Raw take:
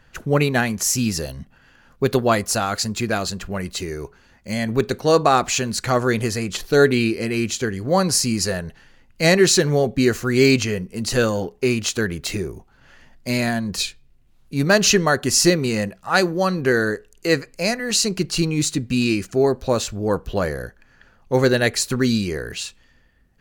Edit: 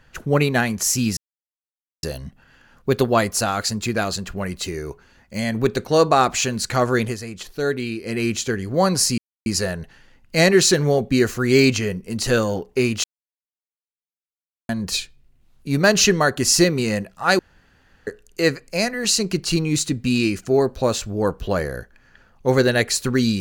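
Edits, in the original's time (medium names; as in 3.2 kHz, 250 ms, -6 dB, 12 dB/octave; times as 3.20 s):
1.17 s: insert silence 0.86 s
6.17–7.30 s: dip -8 dB, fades 0.14 s
8.32 s: insert silence 0.28 s
11.90–13.55 s: mute
16.25–16.93 s: room tone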